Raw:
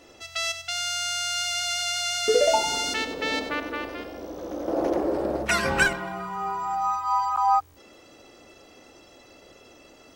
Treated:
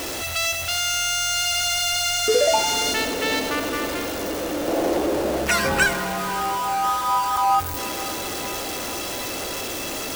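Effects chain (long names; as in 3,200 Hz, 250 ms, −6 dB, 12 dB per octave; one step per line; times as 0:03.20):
converter with a step at zero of −25.5 dBFS
high-shelf EQ 5,400 Hz +5 dB
feedback delay with all-pass diffusion 526 ms, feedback 72%, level −16 dB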